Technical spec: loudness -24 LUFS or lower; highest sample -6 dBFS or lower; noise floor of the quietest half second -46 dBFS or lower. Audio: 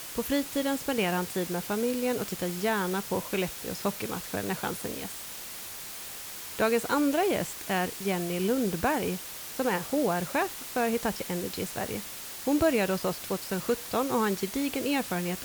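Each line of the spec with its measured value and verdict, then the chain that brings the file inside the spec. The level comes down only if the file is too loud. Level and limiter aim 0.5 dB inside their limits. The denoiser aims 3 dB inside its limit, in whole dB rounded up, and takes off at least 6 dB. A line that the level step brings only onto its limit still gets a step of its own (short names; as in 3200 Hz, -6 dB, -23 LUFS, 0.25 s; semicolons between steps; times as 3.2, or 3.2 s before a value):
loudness -29.5 LUFS: OK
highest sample -13.0 dBFS: OK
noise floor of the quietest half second -41 dBFS: fail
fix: denoiser 8 dB, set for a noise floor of -41 dBFS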